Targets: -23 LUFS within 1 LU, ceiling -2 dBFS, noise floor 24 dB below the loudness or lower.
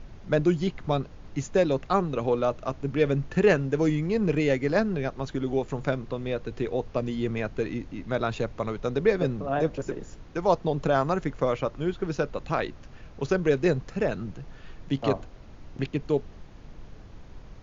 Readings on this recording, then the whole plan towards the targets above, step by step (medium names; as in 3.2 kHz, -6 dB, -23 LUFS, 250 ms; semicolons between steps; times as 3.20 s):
noise floor -46 dBFS; noise floor target -52 dBFS; loudness -27.5 LUFS; peak level -8.0 dBFS; loudness target -23.0 LUFS
-> noise print and reduce 6 dB; trim +4.5 dB